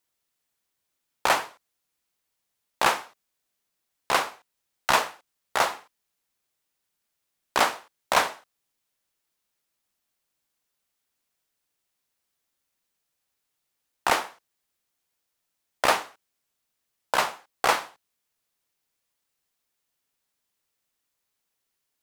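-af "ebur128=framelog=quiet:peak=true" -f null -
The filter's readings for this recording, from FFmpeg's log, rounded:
Integrated loudness:
  I:         -26.0 LUFS
  Threshold: -37.1 LUFS
Loudness range:
  LRA:         5.8 LU
  Threshold: -50.5 LUFS
  LRA low:   -34.5 LUFS
  LRA high:  -28.7 LUFS
True peak:
  Peak:       -6.1 dBFS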